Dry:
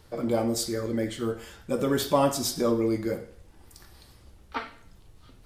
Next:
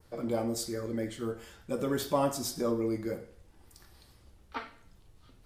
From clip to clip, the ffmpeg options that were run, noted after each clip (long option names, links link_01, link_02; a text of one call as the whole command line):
ffmpeg -i in.wav -af "adynamicequalizer=threshold=0.00355:dfrequency=3400:dqfactor=1.4:tfrequency=3400:tqfactor=1.4:attack=5:release=100:ratio=0.375:range=2.5:mode=cutabove:tftype=bell,volume=-5.5dB" out.wav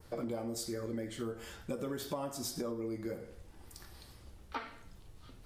ffmpeg -i in.wav -af "acompressor=threshold=-39dB:ratio=10,volume=4dB" out.wav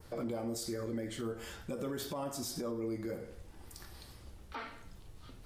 ffmpeg -i in.wav -af "alimiter=level_in=8dB:limit=-24dB:level=0:latency=1:release=23,volume=-8dB,volume=2dB" out.wav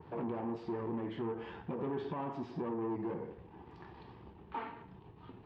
ffmpeg -i in.wav -af "aeval=exprs='(tanh(100*val(0)+0.4)-tanh(0.4))/100':channel_layout=same,highpass=120,equalizer=frequency=160:width_type=q:width=4:gain=5,equalizer=frequency=400:width_type=q:width=4:gain=6,equalizer=frequency=570:width_type=q:width=4:gain=-8,equalizer=frequency=920:width_type=q:width=4:gain=8,equalizer=frequency=1400:width_type=q:width=4:gain=-8,equalizer=frequency=2100:width_type=q:width=4:gain=-7,lowpass=frequency=2500:width=0.5412,lowpass=frequency=2500:width=1.3066,volume=5.5dB" out.wav